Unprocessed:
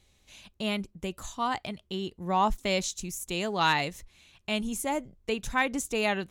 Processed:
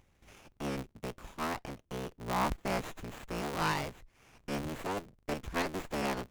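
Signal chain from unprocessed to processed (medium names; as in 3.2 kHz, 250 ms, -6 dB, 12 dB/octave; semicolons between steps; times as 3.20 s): cycle switcher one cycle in 3, inverted; gate with hold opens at -54 dBFS; upward compressor, threshold -41 dBFS; sliding maximum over 9 samples; trim -6 dB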